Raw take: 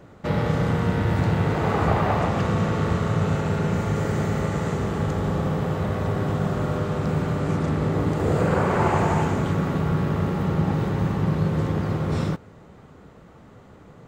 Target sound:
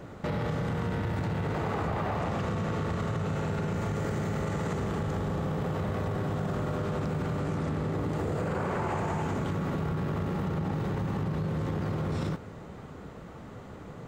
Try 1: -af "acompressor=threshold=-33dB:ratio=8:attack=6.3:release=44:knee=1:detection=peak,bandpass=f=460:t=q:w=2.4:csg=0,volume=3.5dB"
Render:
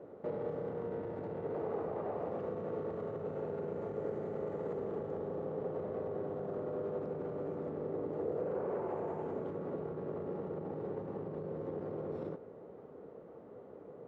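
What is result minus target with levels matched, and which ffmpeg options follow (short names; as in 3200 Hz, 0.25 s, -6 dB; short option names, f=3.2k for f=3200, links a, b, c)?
500 Hz band +6.5 dB
-af "acompressor=threshold=-33dB:ratio=8:attack=6.3:release=44:knee=1:detection=peak,volume=3.5dB"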